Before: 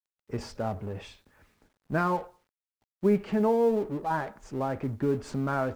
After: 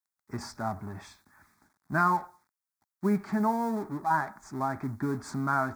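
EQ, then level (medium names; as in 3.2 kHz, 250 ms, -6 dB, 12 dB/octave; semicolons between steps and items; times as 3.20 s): high-pass 260 Hz 6 dB/octave; static phaser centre 1.2 kHz, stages 4; +5.5 dB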